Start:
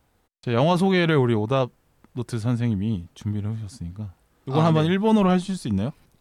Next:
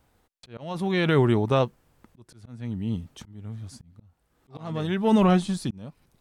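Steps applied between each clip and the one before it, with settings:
volume swells 649 ms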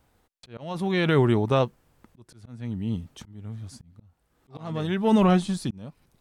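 no processing that can be heard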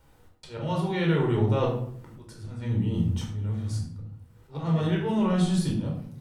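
reversed playback
downward compressor 10 to 1, threshold −28 dBFS, peak gain reduction 13.5 dB
reversed playback
rectangular room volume 960 cubic metres, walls furnished, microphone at 4.6 metres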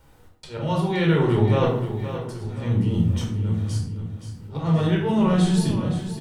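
repeating echo 522 ms, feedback 43%, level −10.5 dB
level +4.5 dB

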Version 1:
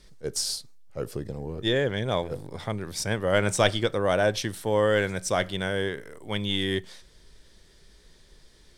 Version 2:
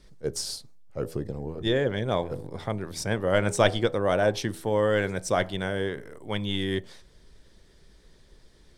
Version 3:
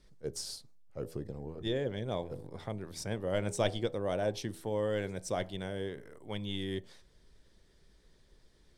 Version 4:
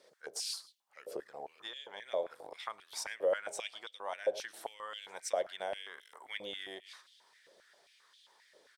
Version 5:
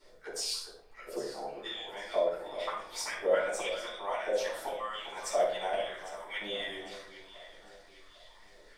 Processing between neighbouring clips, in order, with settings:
tilt shelving filter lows +3.5 dB, about 1,500 Hz; hum removal 81.7 Hz, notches 13; harmonic and percussive parts rebalanced harmonic −4 dB
dynamic equaliser 1,400 Hz, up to −7 dB, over −42 dBFS, Q 1.2; level −8 dB
single-tap delay 110 ms −20 dB; downward compressor 10 to 1, threshold −38 dBFS, peak gain reduction 14.5 dB; high-pass on a step sequencer 7.5 Hz 540–3,200 Hz; level +3.5 dB
background noise brown −78 dBFS; delay that swaps between a low-pass and a high-pass 401 ms, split 1,700 Hz, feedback 63%, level −11 dB; convolution reverb RT60 0.55 s, pre-delay 3 ms, DRR −9.5 dB; level −6.5 dB

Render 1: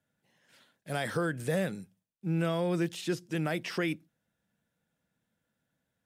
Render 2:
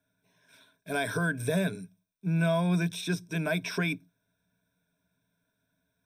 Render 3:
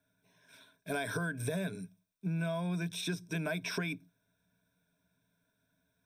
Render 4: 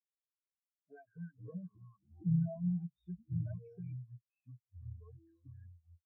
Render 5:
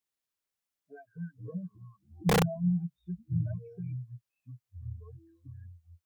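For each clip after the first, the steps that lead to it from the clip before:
EQ curve with evenly spaced ripples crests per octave 1.6, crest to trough 16 dB
downward compressor 6 to 1, threshold −32 dBFS, peak gain reduction 9 dB
delay with pitch and tempo change per echo 112 ms, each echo −6 semitones, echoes 2; every bin expanded away from the loudest bin 4 to 1; level −2 dB
wrap-around overflow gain 26 dB; level +6.5 dB

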